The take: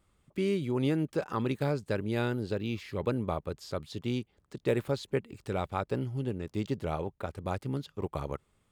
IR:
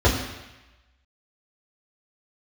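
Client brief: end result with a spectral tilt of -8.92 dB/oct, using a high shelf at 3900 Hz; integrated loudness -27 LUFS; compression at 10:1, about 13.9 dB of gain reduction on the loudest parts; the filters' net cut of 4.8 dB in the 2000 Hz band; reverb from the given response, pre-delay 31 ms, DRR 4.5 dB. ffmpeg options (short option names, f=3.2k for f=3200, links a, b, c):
-filter_complex "[0:a]equalizer=f=2k:t=o:g=-5,highshelf=f=3.9k:g=-6.5,acompressor=threshold=-38dB:ratio=10,asplit=2[a][b];[1:a]atrim=start_sample=2205,adelay=31[c];[b][c]afir=irnorm=-1:irlink=0,volume=-24dB[d];[a][d]amix=inputs=2:normalize=0,volume=11.5dB"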